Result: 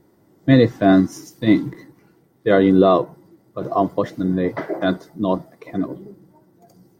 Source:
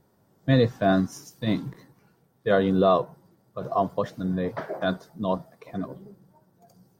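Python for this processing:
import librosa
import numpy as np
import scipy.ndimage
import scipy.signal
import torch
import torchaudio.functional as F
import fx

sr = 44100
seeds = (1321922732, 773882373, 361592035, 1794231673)

y = fx.small_body(x, sr, hz=(320.0, 2000.0), ring_ms=45, db=13)
y = y * librosa.db_to_amplitude(4.0)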